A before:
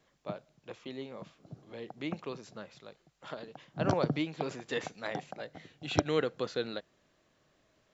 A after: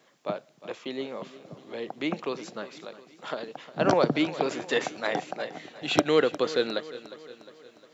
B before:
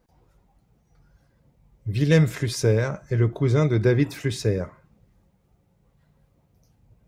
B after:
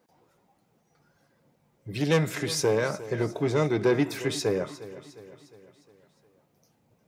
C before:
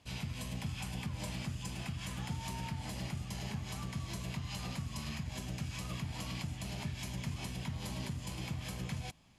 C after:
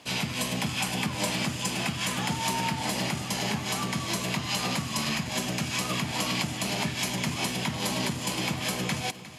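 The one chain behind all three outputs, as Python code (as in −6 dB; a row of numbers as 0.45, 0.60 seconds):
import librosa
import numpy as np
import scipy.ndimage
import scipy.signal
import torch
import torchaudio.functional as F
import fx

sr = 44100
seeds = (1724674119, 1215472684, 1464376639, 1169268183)

y = 10.0 ** (-14.5 / 20.0) * np.tanh(x / 10.0 ** (-14.5 / 20.0))
y = scipy.signal.sosfilt(scipy.signal.butter(2, 230.0, 'highpass', fs=sr, output='sos'), y)
y = fx.echo_feedback(y, sr, ms=356, feedback_pct=52, wet_db=-16)
y = y * 10.0 ** (-30 / 20.0) / np.sqrt(np.mean(np.square(y)))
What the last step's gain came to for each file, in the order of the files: +9.0, +1.5, +15.5 decibels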